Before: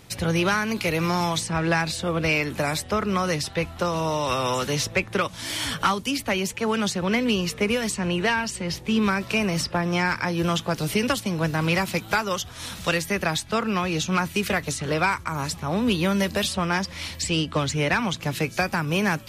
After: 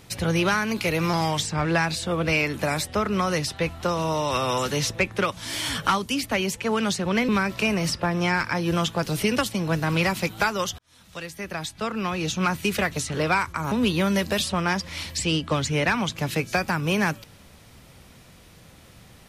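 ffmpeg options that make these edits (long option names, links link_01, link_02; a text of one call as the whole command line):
ffmpeg -i in.wav -filter_complex "[0:a]asplit=6[link_01][link_02][link_03][link_04][link_05][link_06];[link_01]atrim=end=1.134[link_07];[link_02]atrim=start=1.13:end=1.61,asetpts=PTS-STARTPTS,asetrate=41013,aresample=44100,atrim=end_sample=22761,asetpts=PTS-STARTPTS[link_08];[link_03]atrim=start=1.606:end=7.252[link_09];[link_04]atrim=start=8.998:end=12.5,asetpts=PTS-STARTPTS,afade=type=out:start_time=3.498:duration=0.004:curve=hsin[link_10];[link_05]atrim=start=12.5:end=15.432,asetpts=PTS-STARTPTS,afade=type=in:duration=1.75[link_11];[link_06]atrim=start=15.758[link_12];[link_07][link_08]acrossfade=duration=0.004:curve1=hsin:curve2=hsin[link_13];[link_13][link_09]acrossfade=duration=0.004:curve1=hsin:curve2=hsin[link_14];[link_10][link_11]concat=n=2:v=0:a=1[link_15];[link_14][link_15]acrossfade=duration=0.004:curve1=hsin:curve2=hsin[link_16];[link_16][link_12]acrossfade=duration=0.004:curve1=hsin:curve2=hsin" out.wav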